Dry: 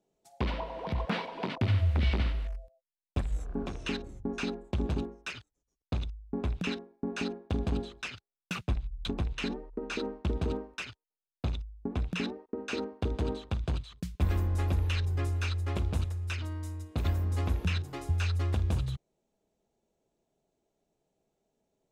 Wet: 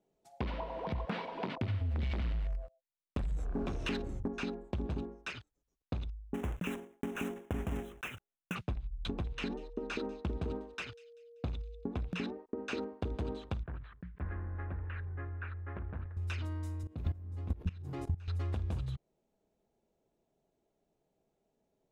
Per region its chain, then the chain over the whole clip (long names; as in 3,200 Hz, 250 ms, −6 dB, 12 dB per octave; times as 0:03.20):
0:01.81–0:04.28: downward compressor, threshold −27 dBFS + leveller curve on the samples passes 2
0:06.34–0:08.56: one scale factor per block 3 bits + Butterworth band-reject 4,500 Hz, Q 1.4
0:09.10–0:12.18: steady tone 470 Hz −53 dBFS + delay with a high-pass on its return 193 ms, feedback 35%, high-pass 3,600 Hz, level −17 dB
0:13.63–0:16.17: transistor ladder low-pass 1,900 Hz, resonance 60% + level that may fall only so fast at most 87 dB per second
0:16.83–0:18.28: high-pass filter 66 Hz + low-shelf EQ 330 Hz +11 dB + output level in coarse steps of 19 dB
whole clip: high-shelf EQ 3,700 Hz −8 dB; downward compressor 3 to 1, threshold −34 dBFS